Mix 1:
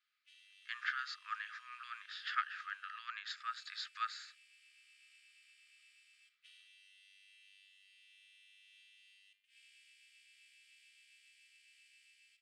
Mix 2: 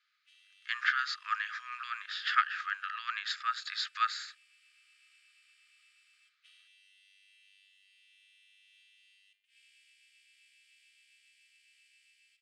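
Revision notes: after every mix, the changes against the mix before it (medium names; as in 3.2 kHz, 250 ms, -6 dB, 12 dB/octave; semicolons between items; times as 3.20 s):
speech +9.0 dB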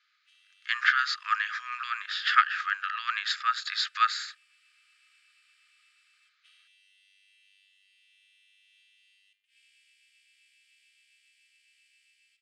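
speech +6.0 dB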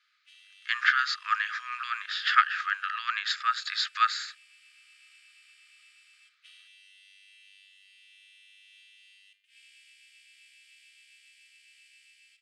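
background +7.5 dB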